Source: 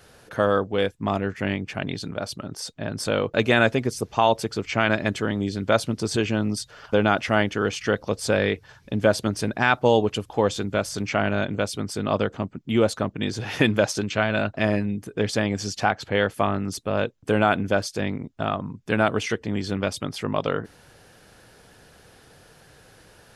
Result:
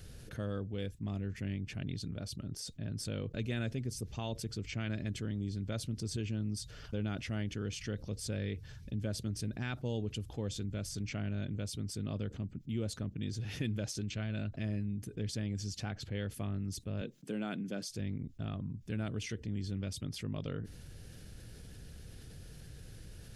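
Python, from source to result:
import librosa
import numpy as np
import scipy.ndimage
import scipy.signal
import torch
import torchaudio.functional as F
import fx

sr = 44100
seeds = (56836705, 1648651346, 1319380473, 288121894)

y = fx.steep_highpass(x, sr, hz=160.0, slope=36, at=(17.01, 17.9))
y = fx.tone_stack(y, sr, knobs='10-0-1')
y = fx.env_flatten(y, sr, amount_pct=50)
y = y * librosa.db_to_amplitude(1.0)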